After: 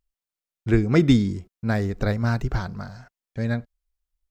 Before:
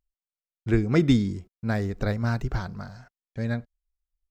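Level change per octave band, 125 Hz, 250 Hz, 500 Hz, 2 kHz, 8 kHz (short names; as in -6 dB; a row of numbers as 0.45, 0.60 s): +3.0 dB, +3.0 dB, +3.0 dB, +3.0 dB, n/a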